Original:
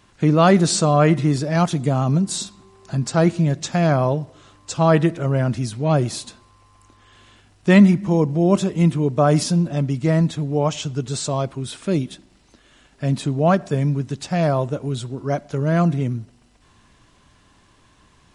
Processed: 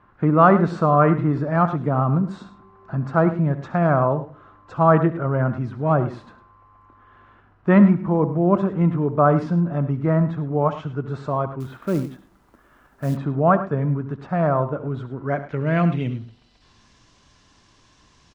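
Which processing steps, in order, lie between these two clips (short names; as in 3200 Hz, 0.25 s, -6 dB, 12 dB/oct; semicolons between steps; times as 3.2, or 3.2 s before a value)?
low-pass sweep 1300 Hz -> 5800 Hz, 14.95–16.88; on a send: tapped delay 69/105 ms -15.5/-14 dB; 11.6–13.17 on the sum: companded quantiser 6-bit; gain -2.5 dB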